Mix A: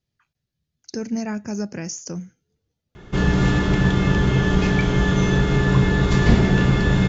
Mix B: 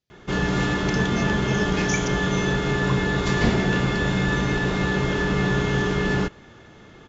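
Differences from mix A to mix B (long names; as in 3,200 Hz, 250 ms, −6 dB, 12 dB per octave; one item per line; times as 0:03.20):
background: entry −2.85 s
master: add low-shelf EQ 180 Hz −10.5 dB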